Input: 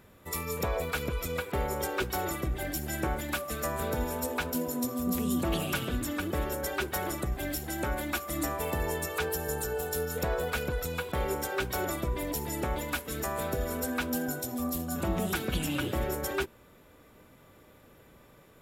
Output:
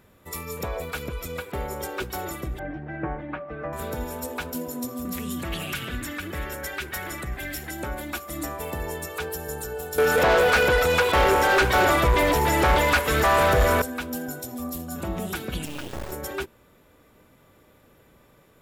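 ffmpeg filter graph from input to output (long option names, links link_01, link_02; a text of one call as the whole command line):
ffmpeg -i in.wav -filter_complex "[0:a]asettb=1/sr,asplit=3[link_01][link_02][link_03];[link_01]atrim=end=2.594[link_04];[link_02]atrim=start=2.59:end=3.73,asetpts=PTS-STARTPTS,afade=type=in:duration=0.004:curve=qsin,afade=type=out:start_time=1.136:duration=0.004:curve=qsin,lowpass=frequency=2000:width=0.5412,lowpass=frequency=2000:width=1.3066,aecho=1:1:6.5:0.57,atrim=end_sample=50274[link_05];[link_03]atrim=start=3.726[link_06];[link_04][link_05]acrossfade=duration=0.004:curve1=hsin:curve2=qsin[link_07];[link_07][link_06]acrossfade=duration=0.004:curve1=qsin:curve2=hsin,asettb=1/sr,asplit=3[link_08][link_09][link_10];[link_08]atrim=end=5.054[link_11];[link_09]atrim=start=5.05:end=7.71,asetpts=PTS-STARTPTS,afade=type=in:duration=0.004:curve=qsin,afade=type=out:start_time=2.656:duration=0.004:curve=qsin,equalizer=frequency=1900:width=1.1:gain=11.5,acrossover=split=190|3000[link_12][link_13][link_14];[link_13]acompressor=threshold=-33dB:ratio=3:attack=3.2:release=140:knee=2.83:detection=peak[link_15];[link_12][link_15][link_14]amix=inputs=3:normalize=0[link_16];[link_10]atrim=start=7.706[link_17];[link_11][link_16]acrossfade=duration=0.004:curve1=hsin:curve2=qsin[link_18];[link_18][link_17]acrossfade=duration=0.004:curve1=qsin:curve2=hsin,asettb=1/sr,asplit=3[link_19][link_20][link_21];[link_19]atrim=end=9.984[link_22];[link_20]atrim=start=9.98:end=13.82,asetpts=PTS-STARTPTS,afade=type=in:duration=0.004:curve=qsin,afade=type=out:start_time=3.836:duration=0.004:curve=qsin,acrossover=split=2500[link_23][link_24];[link_24]acompressor=threshold=-49dB:ratio=4:attack=1:release=60[link_25];[link_23][link_25]amix=inputs=2:normalize=0,asubboost=boost=9:cutoff=90,asplit=2[link_26][link_27];[link_27]highpass=frequency=720:poles=1,volume=30dB,asoftclip=type=tanh:threshold=-10dB[link_28];[link_26][link_28]amix=inputs=2:normalize=0,lowpass=frequency=7100:poles=1,volume=-6dB[link_29];[link_21]atrim=start=13.816[link_30];[link_22][link_29]acrossfade=duration=0.004:curve1=hsin:curve2=qsin[link_31];[link_31][link_30]acrossfade=duration=0.004:curve1=qsin:curve2=hsin,asettb=1/sr,asplit=3[link_32][link_33][link_34];[link_32]atrim=end=15.654[link_35];[link_33]atrim=start=15.65:end=16.12,asetpts=PTS-STARTPTS,afade=type=in:duration=0.004:curve=qsin,afade=type=out:start_time=0.466:duration=0.004:curve=qsin,lowpass=7700,acrusher=bits=4:dc=4:mix=0:aa=0.000001[link_36];[link_34]atrim=start=16.116[link_37];[link_35][link_36]acrossfade=duration=0.004:curve1=hsin:curve2=qsin[link_38];[link_38][link_37]acrossfade=duration=0.004:curve1=qsin:curve2=hsin" out.wav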